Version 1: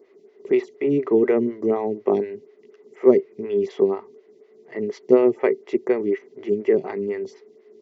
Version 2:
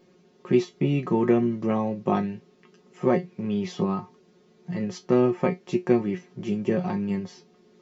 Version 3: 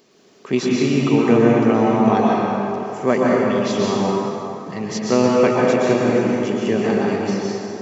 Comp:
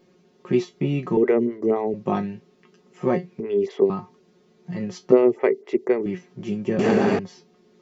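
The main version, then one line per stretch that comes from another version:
2
0:01.17–0:01.94: punch in from 1
0:03.40–0:03.90: punch in from 1
0:05.12–0:06.06: punch in from 1
0:06.79–0:07.19: punch in from 3

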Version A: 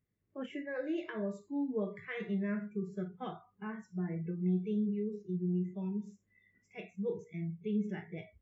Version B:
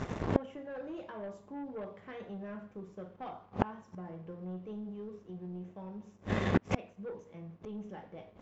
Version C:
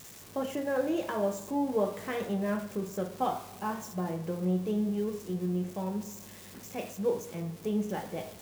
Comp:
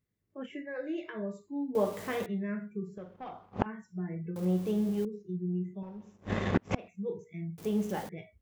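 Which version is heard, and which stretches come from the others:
A
0:01.75–0:02.26: punch in from C
0:02.98–0:03.66: punch in from B
0:04.36–0:05.05: punch in from C
0:05.83–0:06.88: punch in from B
0:07.58–0:08.09: punch in from C

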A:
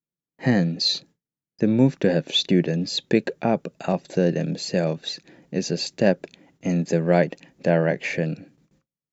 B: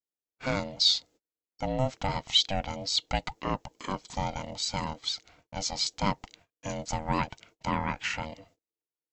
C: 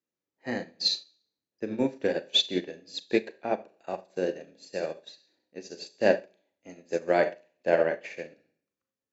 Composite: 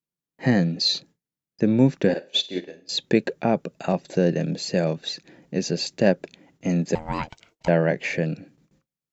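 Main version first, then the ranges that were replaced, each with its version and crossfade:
A
0:02.14–0:02.89: punch in from C
0:06.95–0:07.68: punch in from B

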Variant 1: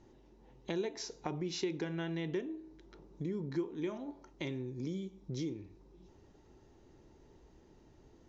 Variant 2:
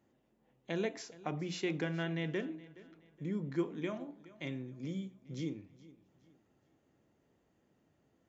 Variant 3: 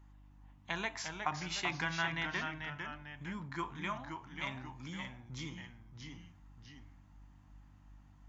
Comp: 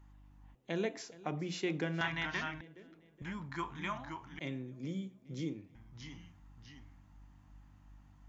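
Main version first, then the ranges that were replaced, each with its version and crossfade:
3
0:00.55–0:02.01: punch in from 2
0:02.61–0:03.22: punch in from 2
0:04.39–0:05.75: punch in from 2
not used: 1

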